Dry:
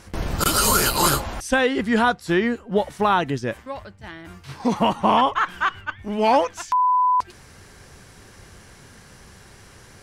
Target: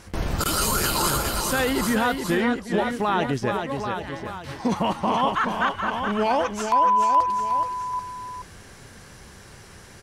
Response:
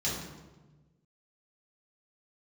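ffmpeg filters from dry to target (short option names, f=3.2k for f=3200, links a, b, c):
-filter_complex "[0:a]asplit=2[a][b];[b]aecho=0:1:788:0.266[c];[a][c]amix=inputs=2:normalize=0,alimiter=limit=-14dB:level=0:latency=1:release=24,asplit=2[d][e];[e]aecho=0:1:426:0.501[f];[d][f]amix=inputs=2:normalize=0"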